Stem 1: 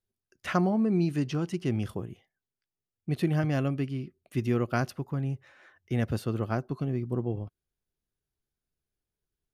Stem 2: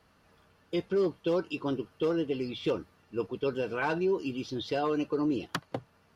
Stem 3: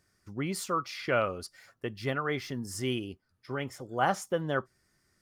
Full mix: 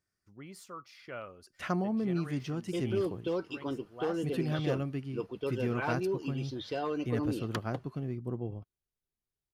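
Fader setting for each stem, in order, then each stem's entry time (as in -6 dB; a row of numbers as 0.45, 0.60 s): -6.0, -4.5, -15.0 dB; 1.15, 2.00, 0.00 s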